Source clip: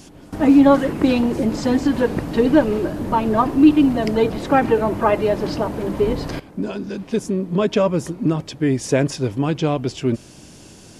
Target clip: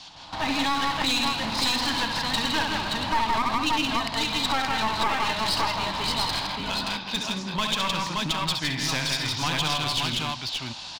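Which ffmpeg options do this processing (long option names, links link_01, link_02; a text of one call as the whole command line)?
ffmpeg -i in.wav -filter_complex "[0:a]acrossover=split=320|1100[link_01][link_02][link_03];[link_02]acompressor=threshold=-31dB:ratio=20[link_04];[link_01][link_04][link_03]amix=inputs=3:normalize=0,lowpass=frequency=4000:width_type=q:width=4.4,lowshelf=frequency=610:width_type=q:width=3:gain=-13.5,asplit=2[link_05][link_06];[link_06]aecho=0:1:48|67|136|162|218|574:0.112|0.447|0.126|0.531|0.2|0.631[link_07];[link_05][link_07]amix=inputs=2:normalize=0,alimiter=limit=-14.5dB:level=0:latency=1:release=136,dynaudnorm=framelen=130:gausssize=3:maxgain=4dB,aeval=exprs='clip(val(0),-1,0.0562)':channel_layout=same,equalizer=frequency=1500:width_type=o:width=1.4:gain=-4.5" out.wav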